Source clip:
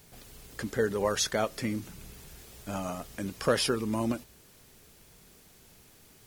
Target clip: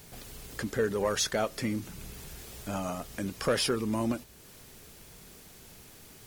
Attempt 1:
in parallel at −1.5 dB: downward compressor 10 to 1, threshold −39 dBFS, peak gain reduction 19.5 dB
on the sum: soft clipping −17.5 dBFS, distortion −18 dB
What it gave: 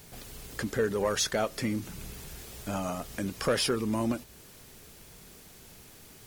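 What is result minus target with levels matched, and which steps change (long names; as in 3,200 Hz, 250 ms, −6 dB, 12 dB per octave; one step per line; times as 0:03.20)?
downward compressor: peak gain reduction −7 dB
change: downward compressor 10 to 1, threshold −46.5 dBFS, peak gain reduction 26 dB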